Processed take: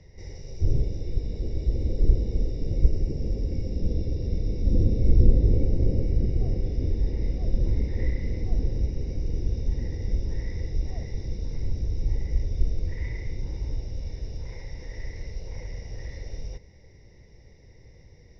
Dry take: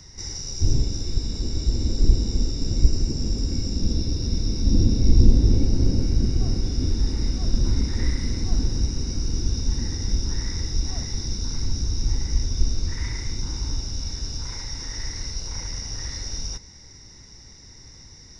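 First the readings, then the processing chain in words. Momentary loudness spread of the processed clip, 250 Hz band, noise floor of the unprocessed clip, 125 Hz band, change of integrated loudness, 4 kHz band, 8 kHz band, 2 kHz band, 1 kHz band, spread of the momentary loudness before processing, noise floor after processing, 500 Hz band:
15 LU, −5.5 dB, −46 dBFS, −2.5 dB, −3.0 dB, −20.0 dB, can't be measured, −6.0 dB, −8.0 dB, 10 LU, −52 dBFS, +1.0 dB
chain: drawn EQ curve 160 Hz 0 dB, 260 Hz −6 dB, 510 Hz +8 dB, 1,400 Hz −19 dB, 2,000 Hz −1 dB, 8,500 Hz −27 dB
level −2.5 dB

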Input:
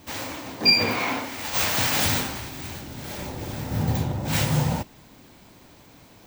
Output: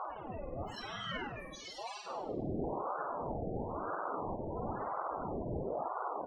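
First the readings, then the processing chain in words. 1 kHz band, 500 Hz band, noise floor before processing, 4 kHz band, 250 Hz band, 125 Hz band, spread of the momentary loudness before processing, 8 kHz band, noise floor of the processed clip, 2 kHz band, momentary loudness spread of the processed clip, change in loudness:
−5.5 dB, −5.0 dB, −51 dBFS, −23.5 dB, −11.5 dB, −17.5 dB, 16 LU, −28.0 dB, −48 dBFS, −19.0 dB, 6 LU, −16.0 dB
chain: linear delta modulator 64 kbit/s, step −18 dBFS
noise reduction from a noise print of the clip's start 19 dB
low-shelf EQ 310 Hz +9 dB
comb filter 3.5 ms, depth 44%
downward compressor 20 to 1, threshold −21 dBFS, peak gain reduction 8.5 dB
wave folding −30.5 dBFS
tuned comb filter 110 Hz, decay 1.2 s, harmonics odd, mix 70%
spectral peaks only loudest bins 16
high-frequency loss of the air 180 metres
on a send: flutter between parallel walls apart 8.6 metres, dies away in 0.75 s
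on the sum: ring modulator whose carrier an LFO sweeps 590 Hz, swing 60%, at 1 Hz
level +9.5 dB

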